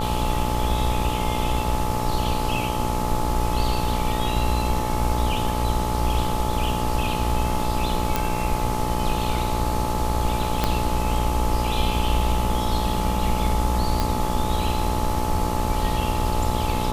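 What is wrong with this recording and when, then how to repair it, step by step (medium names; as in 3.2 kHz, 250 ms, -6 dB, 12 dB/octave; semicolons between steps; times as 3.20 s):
buzz 60 Hz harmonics 22 -27 dBFS
whine 860 Hz -28 dBFS
8.16 s: pop
10.64 s: pop -6 dBFS
14.00 s: pop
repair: de-click; band-stop 860 Hz, Q 30; de-hum 60 Hz, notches 22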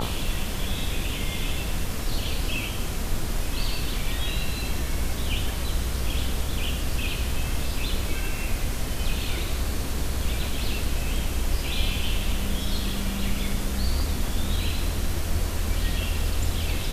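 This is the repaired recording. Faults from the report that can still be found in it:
10.64 s: pop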